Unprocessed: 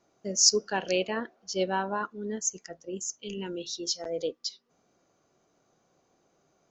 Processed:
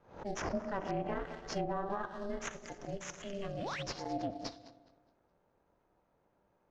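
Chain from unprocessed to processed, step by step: regenerating reverse delay 0.104 s, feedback 58%, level -12.5 dB; on a send at -13 dB: reverb RT60 1.4 s, pre-delay 18 ms; on the sum: painted sound rise, 3.59–3.83, 280–4000 Hz -34 dBFS; in parallel at -4 dB: sample-rate reducer 4900 Hz, jitter 20%; on the sum: low-pass opened by the level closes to 2500 Hz, open at -23 dBFS; ring modulator 200 Hz; treble ducked by the level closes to 1200 Hz, closed at -22.5 dBFS; limiter -19.5 dBFS, peak gain reduction 6.5 dB; backwards sustainer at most 120 dB/s; gain -6 dB

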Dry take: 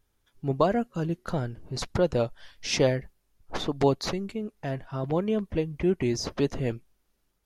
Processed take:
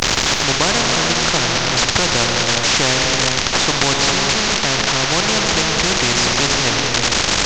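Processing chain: delta modulation 32 kbps, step -30.5 dBFS; in parallel at +1 dB: level quantiser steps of 13 dB; on the sum: tone controls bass +7 dB, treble +1 dB; non-linear reverb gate 0.45 s flat, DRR 4.5 dB; spectral compressor 4:1; gain +2 dB

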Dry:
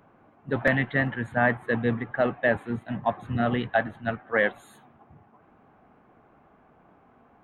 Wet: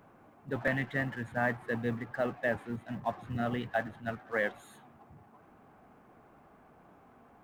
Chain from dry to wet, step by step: G.711 law mismatch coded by mu; gain -8.5 dB

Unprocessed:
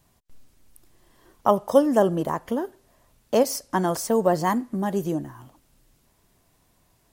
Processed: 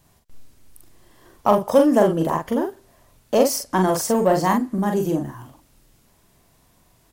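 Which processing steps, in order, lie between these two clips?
in parallel at -5 dB: soft clip -21.5 dBFS, distortion -7 dB; on the sum: doubler 43 ms -4 dB

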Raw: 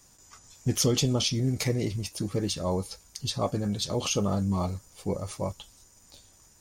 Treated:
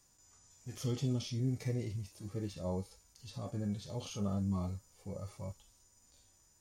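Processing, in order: harmonic-percussive split percussive -17 dB; gain -6.5 dB

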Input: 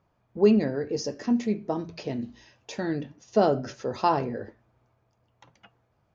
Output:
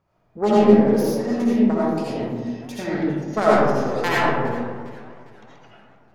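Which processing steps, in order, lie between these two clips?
self-modulated delay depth 0.44 ms; digital reverb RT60 1.6 s, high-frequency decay 0.35×, pre-delay 40 ms, DRR -7.5 dB; warbling echo 0.409 s, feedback 49%, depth 138 cents, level -20 dB; gain -1.5 dB

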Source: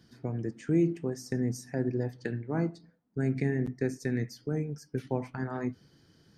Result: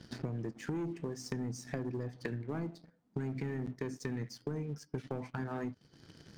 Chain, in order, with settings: LPF 7600 Hz; sample leveller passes 2; compressor 8:1, threshold -44 dBFS, peak gain reduction 23 dB; gain +7.5 dB

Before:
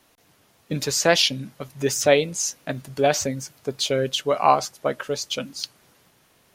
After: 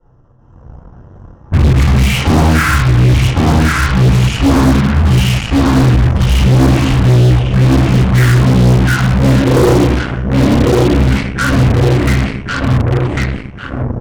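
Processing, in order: Wiener smoothing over 9 samples; ten-band EQ 250 Hz +9 dB, 2000 Hz +5 dB, 8000 Hz -12 dB; on a send: feedback echo 0.513 s, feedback 34%, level -7 dB; on the sum: compressor 2:1, threshold -30 dBFS, peak gain reduction 11.5 dB; low shelf 220 Hz +10 dB; wide varispeed 0.467×; AGC gain up to 9 dB; shoebox room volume 110 m³, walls mixed, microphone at 4.6 m; added harmonics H 7 -28 dB, 8 -15 dB, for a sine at 0.5 dBFS; gain -6.5 dB

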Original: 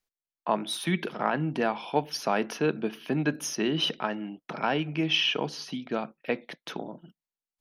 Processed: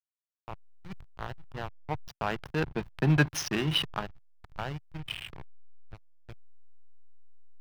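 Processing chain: Doppler pass-by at 3.17, 9 m/s, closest 3.4 m; backlash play -31 dBFS; ten-band EQ 125 Hz +6 dB, 250 Hz -11 dB, 500 Hz -6 dB, 8000 Hz -7 dB; gain +8.5 dB

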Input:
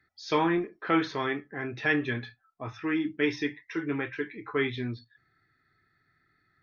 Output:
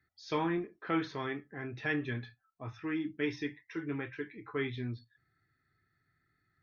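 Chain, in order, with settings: bell 82 Hz +6.5 dB 2.6 oct; gain -8 dB

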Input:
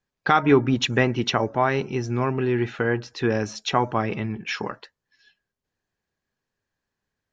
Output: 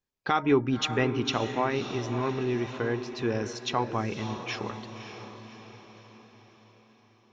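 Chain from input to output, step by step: fifteen-band EQ 160 Hz -5 dB, 630 Hz -3 dB, 1600 Hz -5 dB; on a send: diffused feedback echo 0.58 s, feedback 51%, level -9.5 dB; on the sum: gain -4.5 dB

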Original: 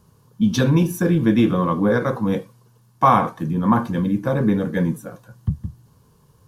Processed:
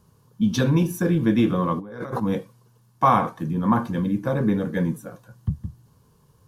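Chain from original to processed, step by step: 1.79–2.2 negative-ratio compressor -30 dBFS, ratio -1; gain -3 dB

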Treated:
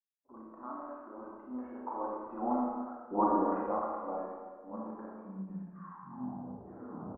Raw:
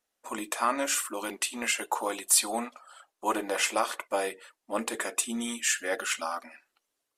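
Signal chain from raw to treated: tape stop at the end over 2.08 s; Doppler pass-by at 2.88, 16 m/s, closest 4.7 m; expander -60 dBFS; steep low-pass 1200 Hz 36 dB/oct; low shelf 360 Hz +7.5 dB; bands offset in time lows, highs 40 ms, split 450 Hz; Schroeder reverb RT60 1.6 s, combs from 28 ms, DRR -4 dB; ending taper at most 170 dB/s

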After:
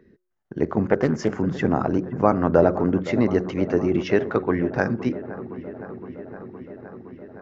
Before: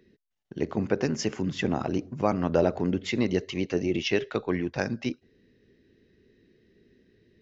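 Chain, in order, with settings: resonant high shelf 2100 Hz -10.5 dB, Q 1.5; de-hum 181.7 Hz, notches 3; on a send: dark delay 0.515 s, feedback 78%, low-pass 1600 Hz, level -15 dB; 0.84–1.4 on the sum: Doppler distortion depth 0.25 ms; gain +6 dB

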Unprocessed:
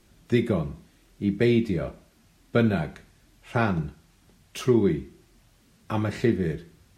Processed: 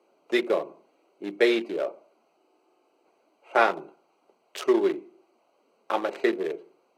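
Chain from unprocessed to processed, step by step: Wiener smoothing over 25 samples; HPF 430 Hz 24 dB/oct; spectral freeze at 2.39, 0.67 s; gain +7 dB

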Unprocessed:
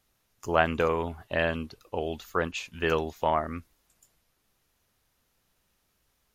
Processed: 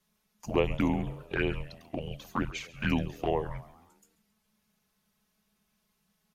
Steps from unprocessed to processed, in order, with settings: envelope flanger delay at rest 4.7 ms, full sweep at -21.5 dBFS; frequency-shifting echo 0.136 s, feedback 48%, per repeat +110 Hz, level -19 dB; frequency shift -220 Hz

